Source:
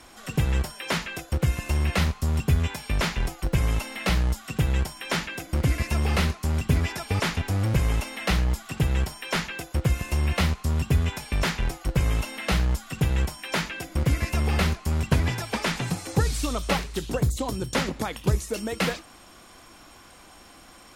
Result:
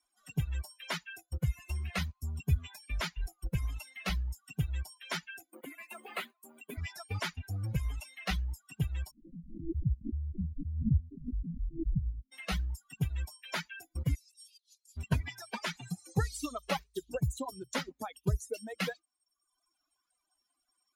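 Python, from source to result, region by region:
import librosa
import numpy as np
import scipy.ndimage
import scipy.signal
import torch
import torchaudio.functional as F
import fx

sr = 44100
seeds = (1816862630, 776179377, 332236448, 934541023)

y = fx.chain(x, sr, fx.highpass(hz=240.0, slope=24),
    fx.peak_eq(hz=5500.0, db=-10.5, octaves=0.52),
    fx.quant_companded(bits=6), at=(5.5, 6.78))
y = fx.chain(y, sr, fx.lower_of_two(delay_ms=0.36),
    fx.cheby2_lowpass(hz=730.0, order=4, stop_db=50),
    fx.pre_swell(db_per_s=27.0), at=(9.11, 12.32))
y = fx.chain(y, sr, fx.cvsd(bps=64000),
    fx.cheby2_highpass(hz=570.0, order=4, stop_db=80),
    fx.over_compress(threshold_db=-45.0, ratio=-1.0), at=(14.15, 14.97))
y = fx.bin_expand(y, sr, power=2.0)
y = fx.dereverb_blind(y, sr, rt60_s=0.77)
y = y * 10.0 ** (-4.0 / 20.0)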